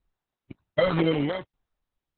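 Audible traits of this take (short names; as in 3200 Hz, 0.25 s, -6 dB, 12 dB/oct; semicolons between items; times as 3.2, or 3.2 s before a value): phasing stages 12, 1 Hz, lowest notch 260–3600 Hz; tremolo saw down 1.3 Hz, depth 95%; aliases and images of a low sample rate 2600 Hz, jitter 0%; Opus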